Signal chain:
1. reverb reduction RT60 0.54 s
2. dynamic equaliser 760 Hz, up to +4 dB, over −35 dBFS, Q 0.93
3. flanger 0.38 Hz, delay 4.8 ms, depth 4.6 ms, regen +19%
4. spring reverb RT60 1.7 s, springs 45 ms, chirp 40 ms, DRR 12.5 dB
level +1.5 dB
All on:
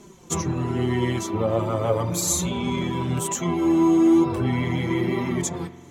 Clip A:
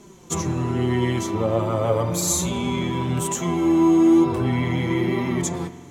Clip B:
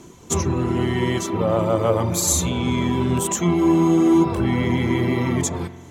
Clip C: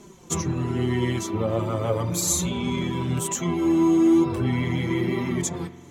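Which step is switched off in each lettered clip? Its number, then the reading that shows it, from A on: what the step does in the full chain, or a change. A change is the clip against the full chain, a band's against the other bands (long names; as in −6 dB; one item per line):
1, change in integrated loudness +1.5 LU
3, change in momentary loudness spread −2 LU
2, 1 kHz band −2.5 dB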